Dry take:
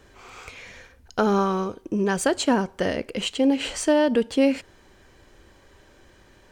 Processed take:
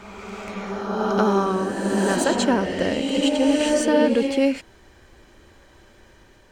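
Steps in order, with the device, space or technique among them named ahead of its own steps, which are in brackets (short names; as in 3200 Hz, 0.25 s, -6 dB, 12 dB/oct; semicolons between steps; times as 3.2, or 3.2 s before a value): reverse reverb (reverse; reverb RT60 3.0 s, pre-delay 68 ms, DRR 1 dB; reverse)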